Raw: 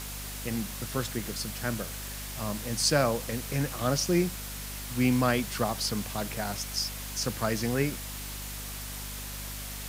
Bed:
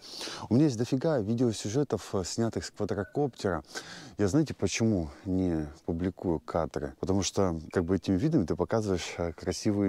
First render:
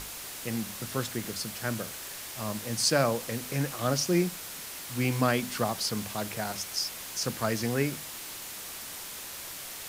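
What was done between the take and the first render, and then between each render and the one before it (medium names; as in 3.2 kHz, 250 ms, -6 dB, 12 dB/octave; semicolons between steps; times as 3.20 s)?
hum notches 50/100/150/200/250 Hz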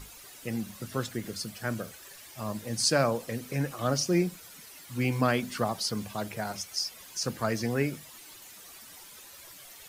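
noise reduction 12 dB, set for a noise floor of -41 dBFS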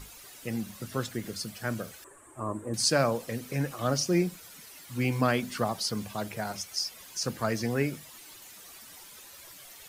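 2.04–2.74 s: FFT filter 120 Hz 0 dB, 180 Hz -8 dB, 320 Hz +10 dB, 500 Hz +2 dB, 800 Hz -1 dB, 1.1 kHz +6 dB, 2 kHz -10 dB, 5.3 kHz -30 dB, 8.1 kHz +2 dB, 14 kHz -24 dB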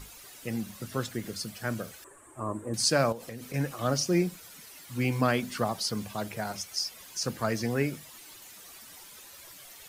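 3.12–3.54 s: compression, threshold -36 dBFS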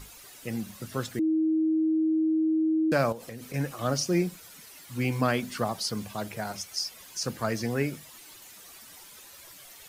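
1.19–2.92 s: bleep 317 Hz -21.5 dBFS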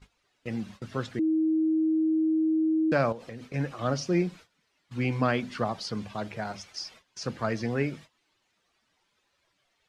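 gate -44 dBFS, range -19 dB; low-pass 4 kHz 12 dB/octave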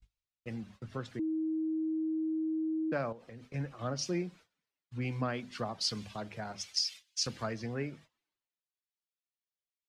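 compression 2.5:1, threshold -36 dBFS, peak gain reduction 11.5 dB; three bands expanded up and down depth 100%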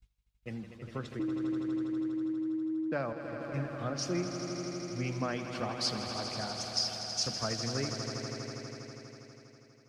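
echo with a slow build-up 81 ms, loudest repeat 5, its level -10.5 dB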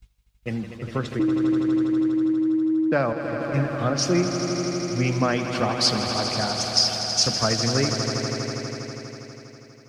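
trim +12 dB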